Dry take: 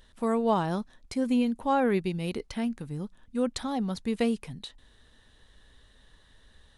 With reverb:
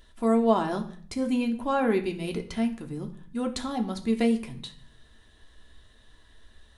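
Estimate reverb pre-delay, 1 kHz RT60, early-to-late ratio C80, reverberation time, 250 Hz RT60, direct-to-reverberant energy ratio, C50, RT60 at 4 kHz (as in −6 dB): 3 ms, 0.45 s, 16.5 dB, 0.50 s, 0.70 s, 3.0 dB, 13.0 dB, 0.40 s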